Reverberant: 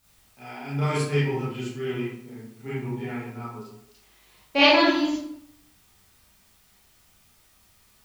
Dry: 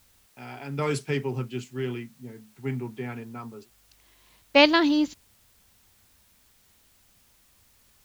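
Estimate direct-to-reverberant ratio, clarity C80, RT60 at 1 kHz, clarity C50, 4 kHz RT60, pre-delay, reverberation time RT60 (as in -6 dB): -10.5 dB, 4.0 dB, 0.70 s, -0.5 dB, 0.50 s, 26 ms, 0.70 s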